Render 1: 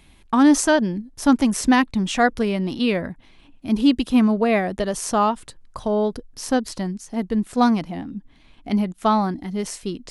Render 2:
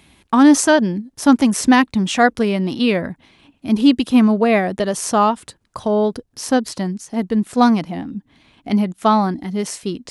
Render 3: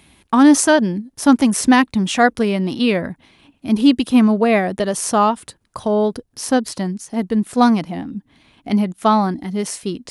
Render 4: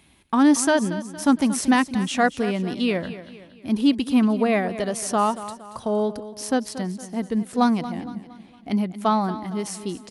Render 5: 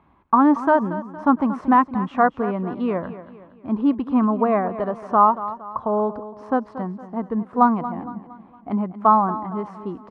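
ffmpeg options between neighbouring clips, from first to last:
-af "highpass=85,volume=1.58"
-af "equalizer=f=9700:w=7.3:g=7"
-af "aecho=1:1:231|462|693|924:0.2|0.0878|0.0386|0.017,volume=0.501"
-af "lowpass=f=1100:t=q:w=3.9,volume=0.891"

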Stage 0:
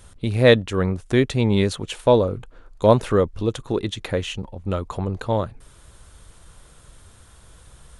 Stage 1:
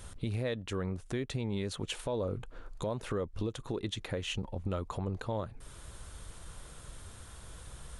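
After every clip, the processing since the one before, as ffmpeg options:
-af "acompressor=threshold=0.02:ratio=2,alimiter=level_in=1.12:limit=0.0631:level=0:latency=1:release=169,volume=0.891"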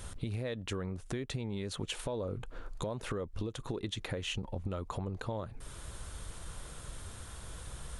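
-af "acompressor=threshold=0.0158:ratio=6,volume=1.41"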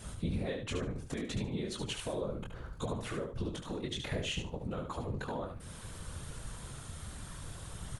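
-af "flanger=delay=15.5:depth=7.8:speed=0.63,afftfilt=real='hypot(re,im)*cos(2*PI*random(0))':imag='hypot(re,im)*sin(2*PI*random(1))':win_size=512:overlap=0.75,aecho=1:1:73|146|219:0.473|0.0946|0.0189,volume=2.66"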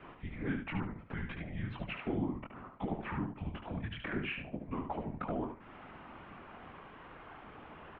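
-af "highpass=f=330:t=q:w=0.5412,highpass=f=330:t=q:w=1.307,lowpass=f=2700:t=q:w=0.5176,lowpass=f=2700:t=q:w=0.7071,lowpass=f=2700:t=q:w=1.932,afreqshift=-260,volume=1.5"

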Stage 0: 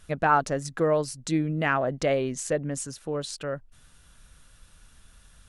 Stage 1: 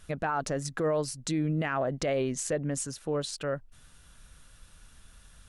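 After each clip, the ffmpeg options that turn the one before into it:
-af "alimiter=limit=0.0944:level=0:latency=1:release=46"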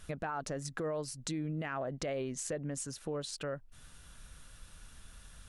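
-af "acompressor=threshold=0.00794:ratio=2,volume=1.12"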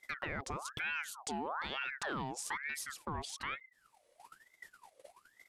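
-af "agate=range=0.178:threshold=0.00355:ratio=16:detection=peak,aeval=exprs='0.0562*(cos(1*acos(clip(val(0)/0.0562,-1,1)))-cos(1*PI/2))+0.00282*(cos(3*acos(clip(val(0)/0.0562,-1,1)))-cos(3*PI/2))':c=same,aeval=exprs='val(0)*sin(2*PI*1300*n/s+1300*0.6/1.1*sin(2*PI*1.1*n/s))':c=same,volume=1.19"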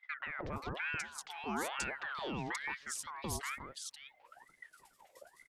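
-filter_complex "[0:a]acrossover=split=970|3200[s0][s1][s2];[s0]adelay=170[s3];[s2]adelay=530[s4];[s3][s1][s4]amix=inputs=3:normalize=0,volume=1.19"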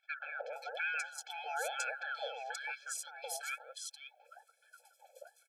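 -af "afftfilt=real='re*eq(mod(floor(b*sr/1024/440),2),1)':imag='im*eq(mod(floor(b*sr/1024/440),2),1)':win_size=1024:overlap=0.75,volume=1.5"

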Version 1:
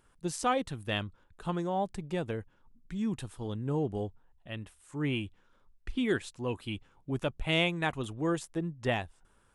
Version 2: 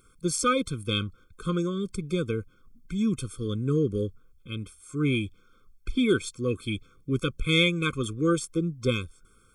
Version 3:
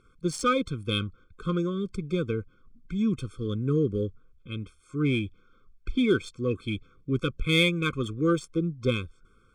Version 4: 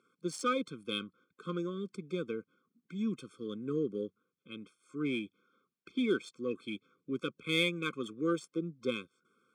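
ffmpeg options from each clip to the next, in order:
-af "highshelf=f=4400:g=8.5,afftfilt=real='re*eq(mod(floor(b*sr/1024/520),2),0)':imag='im*eq(mod(floor(b*sr/1024/520),2),0)':win_size=1024:overlap=0.75,volume=2.11"
-af "adynamicsmooth=sensitivity=2.5:basefreq=4300"
-af "highpass=f=190:w=0.5412,highpass=f=190:w=1.3066,volume=0.447"

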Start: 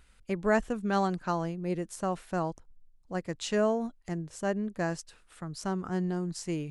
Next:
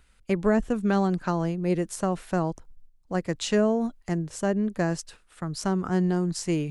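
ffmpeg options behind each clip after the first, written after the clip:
-filter_complex "[0:a]agate=range=0.447:threshold=0.00224:ratio=16:detection=peak,acrossover=split=440[s0][s1];[s1]acompressor=threshold=0.02:ratio=6[s2];[s0][s2]amix=inputs=2:normalize=0,volume=2.24"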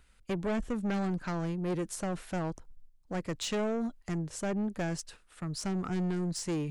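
-af "asoftclip=type=tanh:threshold=0.0562,volume=0.75"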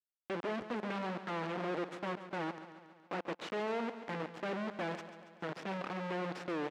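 -filter_complex "[0:a]acrusher=bits=3:dc=4:mix=0:aa=0.000001,highpass=260,lowpass=2400,asplit=2[s0][s1];[s1]aecho=0:1:140|280|420|560|700|840|980:0.251|0.151|0.0904|0.0543|0.0326|0.0195|0.0117[s2];[s0][s2]amix=inputs=2:normalize=0,volume=1.12"

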